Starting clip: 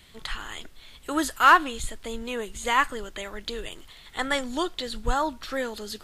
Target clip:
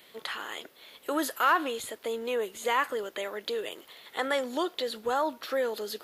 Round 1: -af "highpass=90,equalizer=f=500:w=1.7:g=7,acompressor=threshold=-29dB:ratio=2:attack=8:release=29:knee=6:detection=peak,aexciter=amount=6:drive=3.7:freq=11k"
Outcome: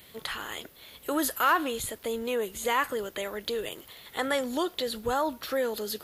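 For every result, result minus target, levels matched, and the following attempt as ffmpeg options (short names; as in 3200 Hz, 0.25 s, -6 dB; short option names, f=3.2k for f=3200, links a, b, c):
125 Hz band +10.0 dB; 8000 Hz band +4.0 dB
-af "highpass=300,equalizer=f=500:w=1.7:g=7,acompressor=threshold=-29dB:ratio=2:attack=8:release=29:knee=6:detection=peak,aexciter=amount=6:drive=3.7:freq=11k"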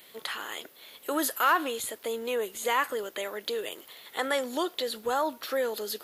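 8000 Hz band +4.5 dB
-af "highpass=300,equalizer=f=500:w=1.7:g=7,acompressor=threshold=-29dB:ratio=2:attack=8:release=29:knee=6:detection=peak,highshelf=f=7.7k:g=-9.5,aexciter=amount=6:drive=3.7:freq=11k"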